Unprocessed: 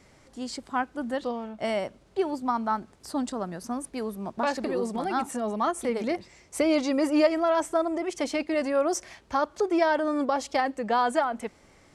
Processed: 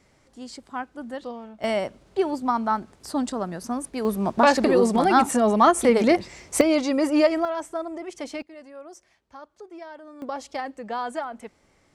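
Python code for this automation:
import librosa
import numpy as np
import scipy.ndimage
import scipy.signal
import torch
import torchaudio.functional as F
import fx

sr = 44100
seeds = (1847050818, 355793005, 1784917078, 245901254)

y = fx.gain(x, sr, db=fx.steps((0.0, -4.0), (1.64, 3.5), (4.05, 10.0), (6.61, 2.5), (7.45, -5.0), (8.42, -17.5), (10.22, -5.5)))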